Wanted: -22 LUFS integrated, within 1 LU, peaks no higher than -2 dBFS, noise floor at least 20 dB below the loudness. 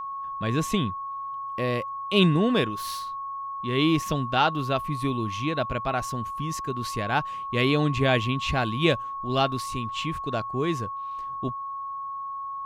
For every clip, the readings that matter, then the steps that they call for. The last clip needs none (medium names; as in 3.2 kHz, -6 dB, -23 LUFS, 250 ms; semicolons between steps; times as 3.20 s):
steady tone 1.1 kHz; tone level -31 dBFS; loudness -26.5 LUFS; peak level -6.0 dBFS; loudness target -22.0 LUFS
-> band-stop 1.1 kHz, Q 30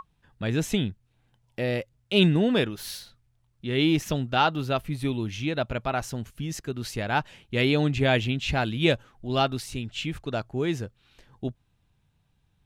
steady tone not found; loudness -27.0 LUFS; peak level -6.0 dBFS; loudness target -22.0 LUFS
-> trim +5 dB; peak limiter -2 dBFS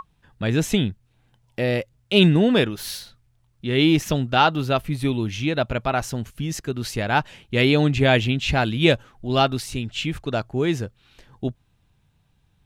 loudness -22.0 LUFS; peak level -2.0 dBFS; noise floor -64 dBFS